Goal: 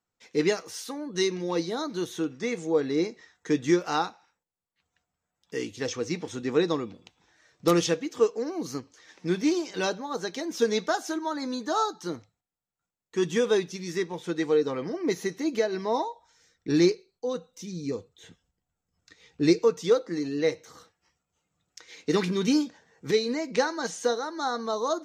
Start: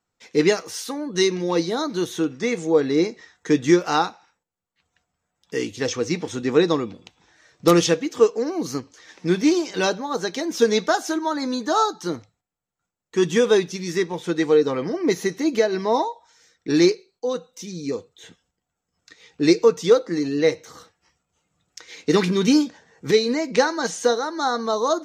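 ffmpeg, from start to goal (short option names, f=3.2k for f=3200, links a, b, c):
-filter_complex "[0:a]asettb=1/sr,asplit=3[a][b][c];[a]atrim=end=16.104[d];[b]atrim=start=16.1:end=19.59,asetpts=PTS-STARTPTS,afade=t=in:d=0.004:c=qsin,afade=t=out:st=3.486:d=0.004:c=qsin,lowshelf=f=150:g=11[e];[c]atrim=start=19.586[f];[d][e]acrossfade=d=0.004:c1=hsin:c2=qsin[g];[g][f]acrossfade=d=0.004:c1=qsin:c2=hsin,volume=-6.5dB"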